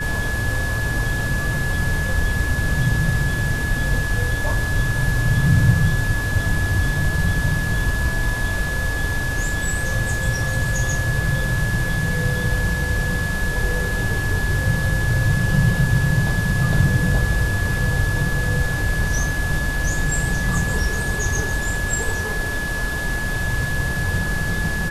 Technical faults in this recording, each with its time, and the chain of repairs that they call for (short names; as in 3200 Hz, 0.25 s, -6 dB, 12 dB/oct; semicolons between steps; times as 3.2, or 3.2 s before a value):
tone 1700 Hz -25 dBFS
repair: notch 1700 Hz, Q 30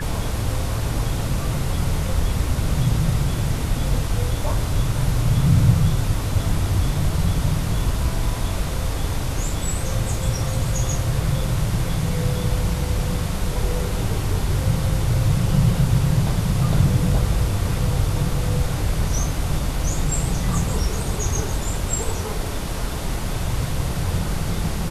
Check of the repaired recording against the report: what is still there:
none